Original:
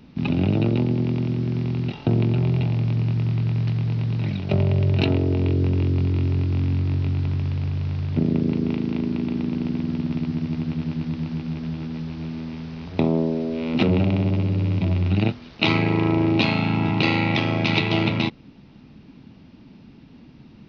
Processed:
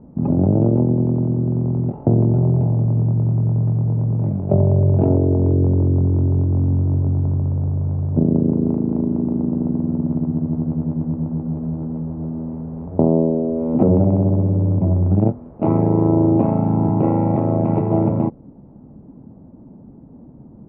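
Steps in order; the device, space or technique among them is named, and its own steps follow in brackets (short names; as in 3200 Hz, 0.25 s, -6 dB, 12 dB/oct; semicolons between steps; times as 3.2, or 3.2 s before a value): under water (LPF 890 Hz 24 dB/oct; bell 560 Hz +4.5 dB 0.51 oct); gain +4.5 dB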